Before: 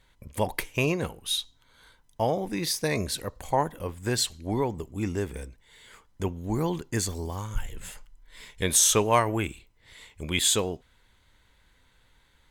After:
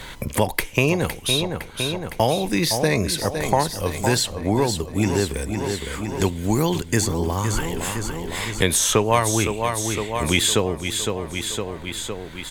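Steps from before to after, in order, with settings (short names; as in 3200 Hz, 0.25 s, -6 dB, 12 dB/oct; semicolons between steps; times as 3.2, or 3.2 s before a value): feedback echo 0.51 s, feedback 49%, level -11 dB; three-band squash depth 70%; gain +7.5 dB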